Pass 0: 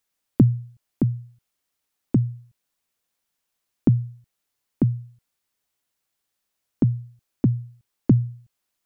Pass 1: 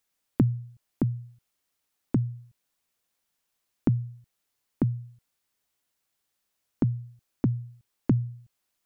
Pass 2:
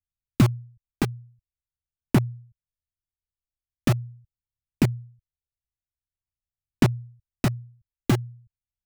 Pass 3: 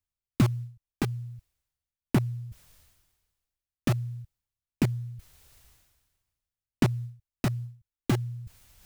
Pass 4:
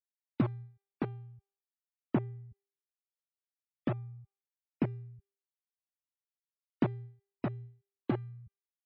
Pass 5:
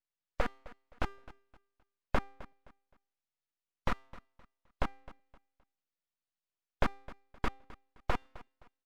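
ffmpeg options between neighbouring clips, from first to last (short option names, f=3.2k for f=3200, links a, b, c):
-af "acompressor=threshold=-30dB:ratio=1.5"
-filter_complex "[0:a]lowshelf=f=500:g=3,acrossover=split=120[a][b];[b]acrusher=bits=3:mix=0:aa=0.000001[c];[a][c]amix=inputs=2:normalize=0,aphaser=in_gain=1:out_gain=1:delay=2.6:decay=0.32:speed=0.44:type=sinusoidal"
-af "areverse,acompressor=mode=upward:threshold=-22dB:ratio=2.5,areverse,acrusher=bits=9:mode=log:mix=0:aa=0.000001,volume=-4.5dB"
-af "bandpass=f=500:t=q:w=0.6:csg=0,afftfilt=real='re*gte(hypot(re,im),0.00398)':imag='im*gte(hypot(re,im),0.00398)':win_size=1024:overlap=0.75,bandreject=f=396.8:t=h:w=4,bandreject=f=793.6:t=h:w=4,bandreject=f=1.1904k:t=h:w=4,bandreject=f=1.5872k:t=h:w=4,bandreject=f=1.984k:t=h:w=4,bandreject=f=2.3808k:t=h:w=4,bandreject=f=2.7776k:t=h:w=4,bandreject=f=3.1744k:t=h:w=4,bandreject=f=3.5712k:t=h:w=4,bandreject=f=3.968k:t=h:w=4,bandreject=f=4.3648k:t=h:w=4,bandreject=f=4.7616k:t=h:w=4,bandreject=f=5.1584k:t=h:w=4,bandreject=f=5.5552k:t=h:w=4,bandreject=f=5.952k:t=h:w=4,bandreject=f=6.3488k:t=h:w=4,bandreject=f=6.7456k:t=h:w=4,bandreject=f=7.1424k:t=h:w=4,bandreject=f=7.5392k:t=h:w=4,bandreject=f=7.936k:t=h:w=4,bandreject=f=8.3328k:t=h:w=4,bandreject=f=8.7296k:t=h:w=4,bandreject=f=9.1264k:t=h:w=4,bandreject=f=9.5232k:t=h:w=4,bandreject=f=9.92k:t=h:w=4,bandreject=f=10.3168k:t=h:w=4,bandreject=f=10.7136k:t=h:w=4,bandreject=f=11.1104k:t=h:w=4,bandreject=f=11.5072k:t=h:w=4,bandreject=f=11.904k:t=h:w=4,bandreject=f=12.3008k:t=h:w=4,bandreject=f=12.6976k:t=h:w=4,bandreject=f=13.0944k:t=h:w=4,volume=-2dB"
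-af "highpass=f=340:w=0.5412,highpass=f=340:w=1.3066,equalizer=f=370:t=q:w=4:g=-5,equalizer=f=670:t=q:w=4:g=3,equalizer=f=1k:t=q:w=4:g=-5,equalizer=f=1.8k:t=q:w=4:g=-4,equalizer=f=2.7k:t=q:w=4:g=-7,lowpass=f=3.6k:w=0.5412,lowpass=f=3.6k:w=1.3066,aeval=exprs='abs(val(0))':c=same,aecho=1:1:260|520|780:0.112|0.0337|0.0101,volume=9.5dB"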